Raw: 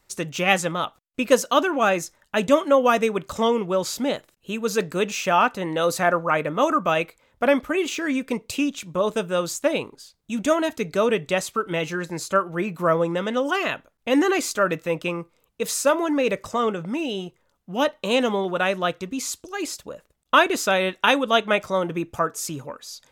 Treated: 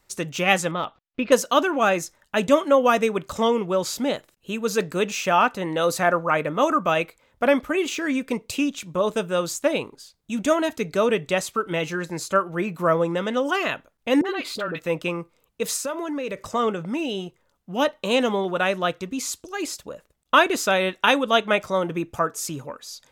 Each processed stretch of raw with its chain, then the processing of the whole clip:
0.71–1.32 LPF 4300 Hz 24 dB/oct + de-esser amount 95%
14.21–14.8 compressor, threshold -24 dBFS + resonant high shelf 5000 Hz -7 dB, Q 3 + dispersion highs, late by 43 ms, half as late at 840 Hz
15.76–16.44 Butterworth band-stop 760 Hz, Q 7.9 + compressor 4:1, threshold -26 dBFS
whole clip: dry

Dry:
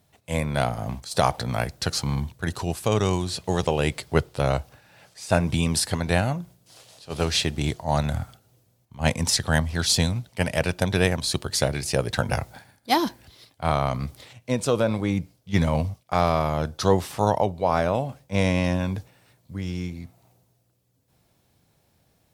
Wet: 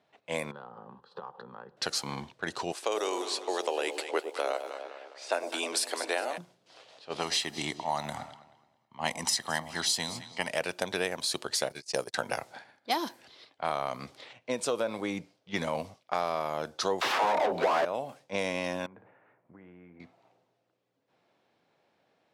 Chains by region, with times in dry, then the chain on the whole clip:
0.51–1.77 air absorption 470 m + compressor 8:1, threshold -32 dBFS + fixed phaser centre 440 Hz, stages 8
2.72–6.38 steep high-pass 290 Hz + echo with dull and thin repeats by turns 0.102 s, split 820 Hz, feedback 68%, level -9 dB
7.18–10.5 low shelf 120 Hz -8 dB + comb 1 ms, depth 52% + echo with dull and thin repeats by turns 0.108 s, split 840 Hz, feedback 52%, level -13 dB
11.69–12.15 gate -28 dBFS, range -35 dB + resonant high shelf 3900 Hz +6 dB, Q 1.5
17.01–17.85 median filter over 5 samples + overdrive pedal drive 36 dB, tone 1600 Hz, clips at -6 dBFS + dispersion lows, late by 65 ms, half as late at 300 Hz
18.86–20 LPF 1900 Hz 24 dB/oct + flutter echo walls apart 9.8 m, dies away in 0.25 s + compressor 12:1, threshold -38 dBFS
whole clip: HPF 350 Hz 12 dB/oct; low-pass opened by the level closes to 2900 Hz, open at -23.5 dBFS; compressor 2.5:1, threshold -29 dBFS

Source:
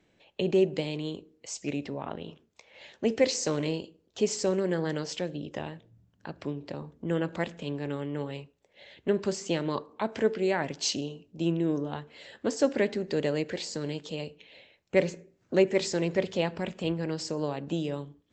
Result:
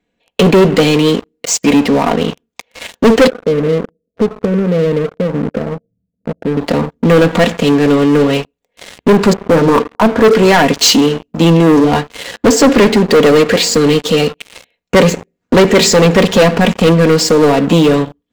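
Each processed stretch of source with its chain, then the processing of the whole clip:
3.27–6.57 compressor 2.5:1, threshold -34 dBFS + rippled Chebyshev low-pass 670 Hz, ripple 6 dB
9.33–10.33 steep low-pass 1600 Hz + notches 60/120/180/240/300/360/420/480 Hz
whole clip: bell 5500 Hz -4 dB 0.72 oct; comb 4.2 ms, depth 59%; sample leveller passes 5; gain +7 dB

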